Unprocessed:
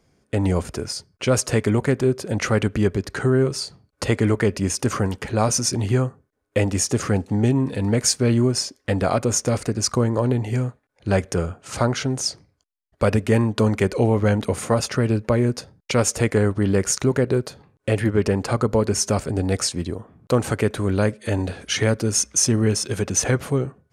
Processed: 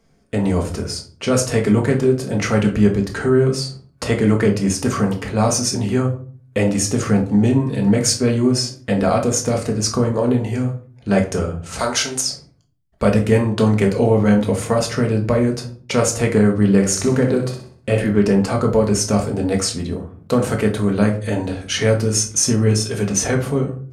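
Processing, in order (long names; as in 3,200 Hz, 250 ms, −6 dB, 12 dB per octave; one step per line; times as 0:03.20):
0:11.79–0:12.21: spectral tilt +4 dB per octave
0:16.74–0:18.01: flutter between parallel walls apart 10.7 metres, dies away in 0.45 s
rectangular room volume 340 cubic metres, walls furnished, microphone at 1.6 metres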